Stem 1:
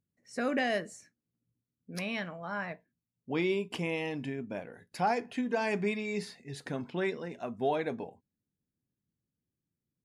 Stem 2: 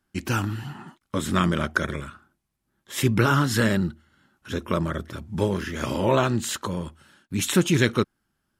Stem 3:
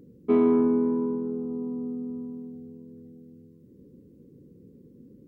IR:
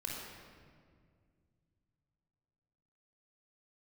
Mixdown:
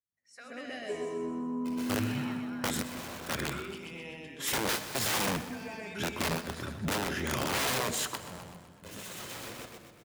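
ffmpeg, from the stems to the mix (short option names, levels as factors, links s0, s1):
-filter_complex "[0:a]adynamicequalizer=threshold=0.00398:dfrequency=2300:dqfactor=0.7:tfrequency=2300:tqfactor=0.7:attack=5:release=100:ratio=0.375:range=3:mode=boostabove:tftype=highshelf,volume=0.376,asplit=4[s0][s1][s2][s3];[s1]volume=0.2[s4];[s2]volume=0.531[s5];[1:a]aeval=exprs='(mod(10.6*val(0)+1,2)-1)/10.6':c=same,highpass=f=98:p=1,acompressor=threshold=0.0316:ratio=2,adelay=1500,volume=0.841,asplit=3[s6][s7][s8];[s7]volume=0.2[s9];[s8]volume=0.188[s10];[2:a]highpass=f=280:p=1,asplit=2[s11][s12];[s12]afreqshift=0.54[s13];[s11][s13]amix=inputs=2:normalize=1,adelay=600,volume=0.841,asplit=2[s14][s15];[s15]volume=0.631[s16];[s3]apad=whole_len=445315[s17];[s6][s17]sidechaingate=range=0.0224:threshold=0.00158:ratio=16:detection=peak[s18];[s0][s14]amix=inputs=2:normalize=0,highpass=f=840:w=0.5412,highpass=f=840:w=1.3066,acompressor=threshold=0.00447:ratio=6,volume=1[s19];[3:a]atrim=start_sample=2205[s20];[s4][s9][s16]amix=inputs=3:normalize=0[s21];[s21][s20]afir=irnorm=-1:irlink=0[s22];[s5][s10]amix=inputs=2:normalize=0,aecho=0:1:126|252|378|504|630|756|882|1008:1|0.54|0.292|0.157|0.085|0.0459|0.0248|0.0134[s23];[s18][s19][s22][s23]amix=inputs=4:normalize=0"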